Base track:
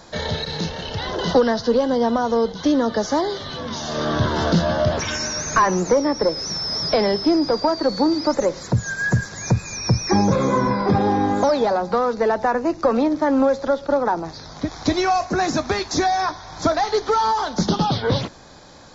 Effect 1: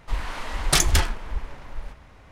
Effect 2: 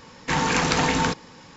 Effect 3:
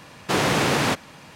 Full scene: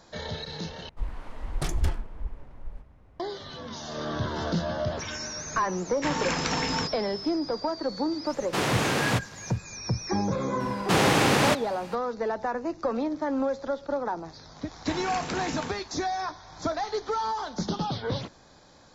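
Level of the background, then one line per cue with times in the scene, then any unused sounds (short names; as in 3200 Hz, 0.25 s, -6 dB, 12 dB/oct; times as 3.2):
base track -10 dB
0.89 replace with 1 -12 dB + tilt shelf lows +7.5 dB
5.74 add 2 -7 dB
8.24 add 3 -5 dB, fades 0.05 s
10.6 add 3 -1 dB
14.58 add 2 -13 dB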